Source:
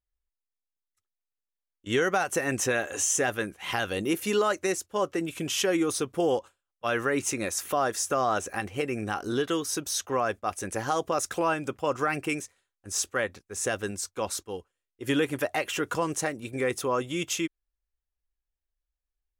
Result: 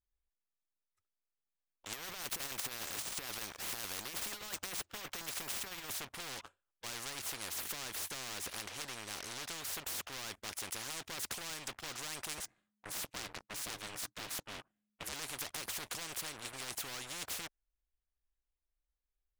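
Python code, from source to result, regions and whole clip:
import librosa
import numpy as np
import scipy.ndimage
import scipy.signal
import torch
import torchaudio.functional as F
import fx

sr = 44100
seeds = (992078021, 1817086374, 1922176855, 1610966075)

y = fx.chain(x, sr, fx.low_shelf(hz=130.0, db=-11.5),
    fx.over_compress(threshold_db=-31.0, ratio=-0.5),
    fx.resample_bad(factor=3, down='none', up='hold'), at=(1.93, 5.9))
y = fx.chain(y, sr, fx.ring_mod(carrier_hz=210.0),
    fx.low_shelf(hz=480.0, db=7.5), at=(12.38, 15.13))
y = fx.high_shelf(y, sr, hz=3400.0, db=-11.0)
y = fx.leveller(y, sr, passes=3)
y = fx.spectral_comp(y, sr, ratio=10.0)
y = y * 10.0 ** (-6.5 / 20.0)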